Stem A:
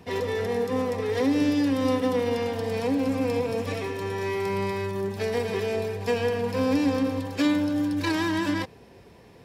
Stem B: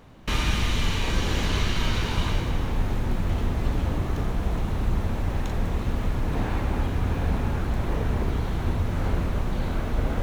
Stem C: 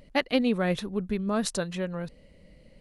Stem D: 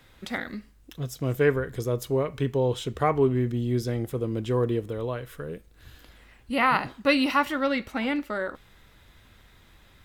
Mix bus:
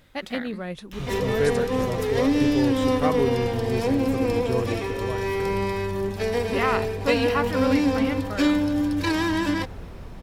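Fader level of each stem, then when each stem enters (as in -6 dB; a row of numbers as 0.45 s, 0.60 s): +2.0 dB, -14.0 dB, -6.5 dB, -3.0 dB; 1.00 s, 0.65 s, 0.00 s, 0.00 s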